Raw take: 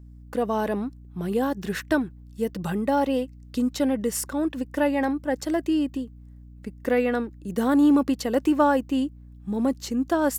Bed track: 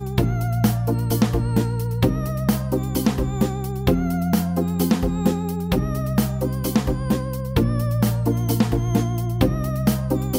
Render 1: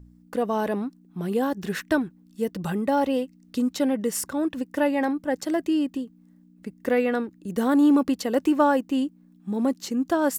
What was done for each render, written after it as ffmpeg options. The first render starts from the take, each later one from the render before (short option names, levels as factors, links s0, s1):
-af "bandreject=f=60:t=h:w=4,bandreject=f=120:t=h:w=4"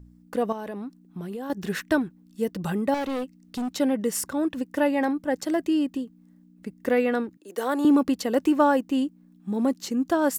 -filter_complex "[0:a]asettb=1/sr,asplit=3[s0][s1][s2];[s0]atrim=end=0.524[s3];[s1]atrim=start=0.52:end=1.5,asetpts=PTS-STARTPTS,afade=t=in:d=0.004:c=qsin,afade=t=out:st=0.976:d=0.004:c=qsin,acompressor=threshold=0.0282:ratio=6:attack=3.2:release=140:knee=1:detection=peak[s4];[s2]atrim=start=1.496[s5];[s3][s4]acrossfade=d=0.004:c1=hsin:c2=qsin[s6];[s6][s5]acrossfade=d=0.004:c1=qsin:c2=hsin,asettb=1/sr,asplit=3[s7][s8][s9];[s7]atrim=end=2.944[s10];[s8]atrim=start=2.94:end=3.69,asetpts=PTS-STARTPTS,afade=t=in:d=0.004:c=qsin,afade=t=out:st=0.746:d=0.004:c=qsin,volume=20,asoftclip=hard,volume=0.0501[s11];[s9]atrim=start=3.686[s12];[s10][s11]acrossfade=d=0.004:c1=hsin:c2=qsin[s13];[s13][s12]acrossfade=d=0.004:c1=qsin:c2=hsin,asettb=1/sr,asplit=3[s14][s15][s16];[s14]atrim=end=7.374[s17];[s15]atrim=start=7.37:end=7.85,asetpts=PTS-STARTPTS,afade=t=in:d=0.004:c=qsin,afade=t=out:st=0.476:d=0.004:c=qsin,highpass=f=360:w=0.5412,highpass=f=360:w=1.3066[s18];[s16]atrim=start=7.846[s19];[s17][s18]acrossfade=d=0.004:c1=hsin:c2=qsin[s20];[s20][s19]acrossfade=d=0.004:c1=qsin:c2=hsin"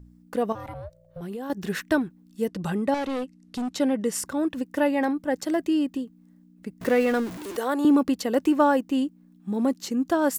-filter_complex "[0:a]asplit=3[s0][s1][s2];[s0]afade=t=out:st=0.54:d=0.02[s3];[s1]aeval=exprs='val(0)*sin(2*PI*340*n/s)':c=same,afade=t=in:st=0.54:d=0.02,afade=t=out:st=1.2:d=0.02[s4];[s2]afade=t=in:st=1.2:d=0.02[s5];[s3][s4][s5]amix=inputs=3:normalize=0,asettb=1/sr,asplit=3[s6][s7][s8];[s6]atrim=end=2.474[s9];[s7]atrim=start=2.47:end=4.24,asetpts=PTS-STARTPTS,afade=t=in:d=0.004:c=qsin,afade=t=out:st=1.766:d=0.004:c=qsin,lowpass=11000[s10];[s8]atrim=start=4.236[s11];[s9][s10]acrossfade=d=0.004:c1=hsin:c2=qsin[s12];[s12][s11]acrossfade=d=0.004:c1=qsin:c2=hsin,asettb=1/sr,asplit=3[s13][s14][s15];[s13]atrim=end=6.814[s16];[s14]atrim=start=6.81:end=7.57,asetpts=PTS-STARTPTS,afade=t=in:d=0.004:c=qsin,afade=t=out:st=0.756:d=0.004:c=qsin,aeval=exprs='val(0)+0.5*0.0251*sgn(val(0))':c=same[s17];[s15]atrim=start=7.566[s18];[s16][s17]acrossfade=d=0.004:c1=hsin:c2=qsin[s19];[s19][s18]acrossfade=d=0.004:c1=qsin:c2=hsin"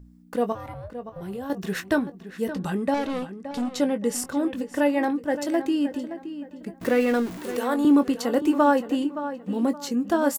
-filter_complex "[0:a]asplit=2[s0][s1];[s1]adelay=21,volume=0.299[s2];[s0][s2]amix=inputs=2:normalize=0,asplit=2[s3][s4];[s4]adelay=570,lowpass=f=3100:p=1,volume=0.266,asplit=2[s5][s6];[s6]adelay=570,lowpass=f=3100:p=1,volume=0.32,asplit=2[s7][s8];[s8]adelay=570,lowpass=f=3100:p=1,volume=0.32[s9];[s5][s7][s9]amix=inputs=3:normalize=0[s10];[s3][s10]amix=inputs=2:normalize=0"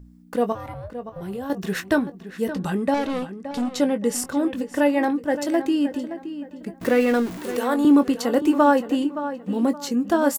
-af "volume=1.33"